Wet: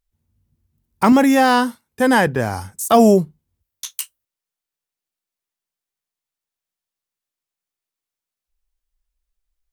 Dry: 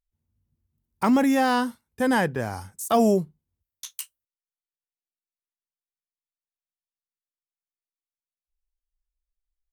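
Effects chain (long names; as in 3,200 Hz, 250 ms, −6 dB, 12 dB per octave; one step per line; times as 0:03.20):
0:01.12–0:02.27: high-pass filter 180 Hz 6 dB per octave
level +8 dB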